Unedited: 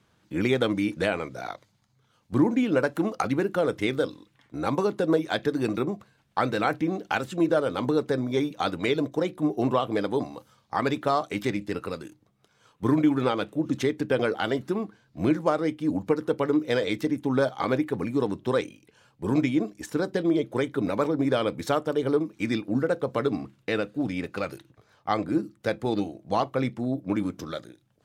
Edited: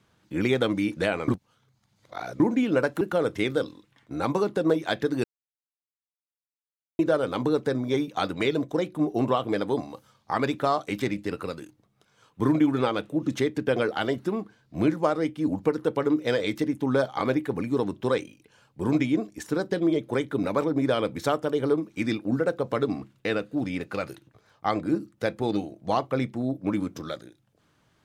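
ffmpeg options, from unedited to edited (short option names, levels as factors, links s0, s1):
-filter_complex "[0:a]asplit=6[s0][s1][s2][s3][s4][s5];[s0]atrim=end=1.282[s6];[s1]atrim=start=1.278:end=2.402,asetpts=PTS-STARTPTS,areverse[s7];[s2]atrim=start=2.398:end=3.012[s8];[s3]atrim=start=3.438:end=5.67,asetpts=PTS-STARTPTS,afade=t=out:st=2.228:d=0.004:c=hsin[s9];[s4]atrim=start=5.67:end=7.42,asetpts=PTS-STARTPTS,volume=0[s10];[s5]atrim=start=7.42,asetpts=PTS-STARTPTS,afade=t=in:d=0.004:c=hsin[s11];[s6][s7]acrossfade=d=0.004:c1=hsin:c2=hsin[s12];[s12][s8]acrossfade=d=0.004:c1=hsin:c2=hsin[s13];[s9][s10][s11]concat=n=3:v=0:a=1[s14];[s13][s14]acrossfade=d=0.004:c1=hsin:c2=hsin"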